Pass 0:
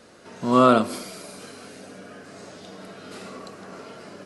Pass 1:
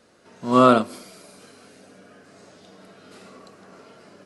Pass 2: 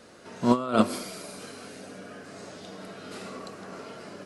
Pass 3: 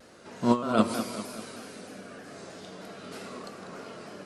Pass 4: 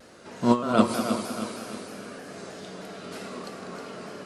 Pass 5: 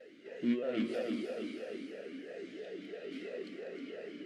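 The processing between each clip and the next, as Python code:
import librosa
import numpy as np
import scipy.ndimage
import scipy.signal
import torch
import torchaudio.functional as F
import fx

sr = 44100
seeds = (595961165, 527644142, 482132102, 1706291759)

y1 = fx.upward_expand(x, sr, threshold_db=-31.0, expansion=1.5)
y1 = y1 * 10.0 ** (2.0 / 20.0)
y2 = fx.over_compress(y1, sr, threshold_db=-21.0, ratio=-0.5)
y3 = fx.echo_feedback(y2, sr, ms=197, feedback_pct=53, wet_db=-10)
y3 = fx.vibrato_shape(y3, sr, shape='saw_down', rate_hz=3.2, depth_cents=100.0)
y3 = y3 * 10.0 ** (-1.5 / 20.0)
y4 = fx.echo_feedback(y3, sr, ms=314, feedback_pct=49, wet_db=-8.5)
y4 = y4 * 10.0 ** (2.5 / 20.0)
y5 = 10.0 ** (-22.0 / 20.0) * np.tanh(y4 / 10.0 ** (-22.0 / 20.0))
y5 = fx.vowel_sweep(y5, sr, vowels='e-i', hz=3.0)
y5 = y5 * 10.0 ** (5.5 / 20.0)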